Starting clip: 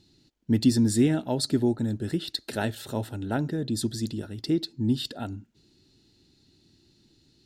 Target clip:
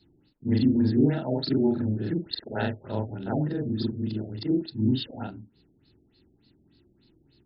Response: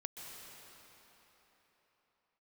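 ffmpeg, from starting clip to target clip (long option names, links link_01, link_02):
-af "afftfilt=real='re':imag='-im':win_size=4096:overlap=0.75,afftfilt=real='re*lt(b*sr/1024,730*pow(5400/730,0.5+0.5*sin(2*PI*3.4*pts/sr)))':imag='im*lt(b*sr/1024,730*pow(5400/730,0.5+0.5*sin(2*PI*3.4*pts/sr)))':win_size=1024:overlap=0.75,volume=5dB"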